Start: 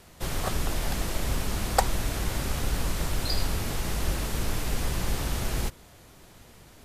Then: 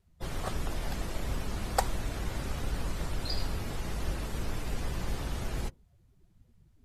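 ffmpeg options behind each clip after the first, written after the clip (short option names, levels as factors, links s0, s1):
-af "afftdn=nr=22:nf=-42,volume=0.562"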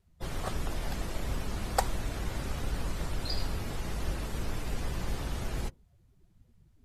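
-af anull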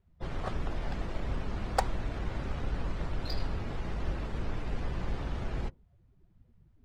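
-af "adynamicsmooth=sensitivity=3.5:basefreq=3100"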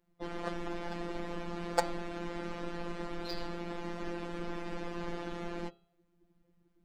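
-af "lowshelf=f=180:t=q:w=3:g=-10.5,afftfilt=real='hypot(re,im)*cos(PI*b)':imag='0':win_size=1024:overlap=0.75,bandreject=f=136.5:t=h:w=4,bandreject=f=273:t=h:w=4,bandreject=f=409.5:t=h:w=4,bandreject=f=546:t=h:w=4,bandreject=f=682.5:t=h:w=4,bandreject=f=819:t=h:w=4,bandreject=f=955.5:t=h:w=4,bandreject=f=1092:t=h:w=4,bandreject=f=1228.5:t=h:w=4,bandreject=f=1365:t=h:w=4,bandreject=f=1501.5:t=h:w=4,bandreject=f=1638:t=h:w=4,bandreject=f=1774.5:t=h:w=4,bandreject=f=1911:t=h:w=4,bandreject=f=2047.5:t=h:w=4,bandreject=f=2184:t=h:w=4,bandreject=f=2320.5:t=h:w=4,bandreject=f=2457:t=h:w=4,bandreject=f=2593.5:t=h:w=4,bandreject=f=2730:t=h:w=4,bandreject=f=2866.5:t=h:w=4,bandreject=f=3003:t=h:w=4,bandreject=f=3139.5:t=h:w=4,bandreject=f=3276:t=h:w=4,bandreject=f=3412.5:t=h:w=4,bandreject=f=3549:t=h:w=4,bandreject=f=3685.5:t=h:w=4,bandreject=f=3822:t=h:w=4,bandreject=f=3958.5:t=h:w=4,bandreject=f=4095:t=h:w=4,bandreject=f=4231.5:t=h:w=4,bandreject=f=4368:t=h:w=4,bandreject=f=4504.5:t=h:w=4,bandreject=f=4641:t=h:w=4,bandreject=f=4777.5:t=h:w=4,volume=1.5"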